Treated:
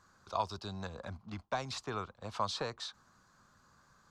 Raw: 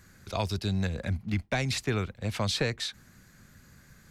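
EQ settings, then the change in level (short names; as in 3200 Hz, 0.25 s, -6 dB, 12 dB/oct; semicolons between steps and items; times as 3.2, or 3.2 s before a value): air absorption 150 m; pre-emphasis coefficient 0.97; resonant high shelf 1500 Hz -11 dB, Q 3; +14.0 dB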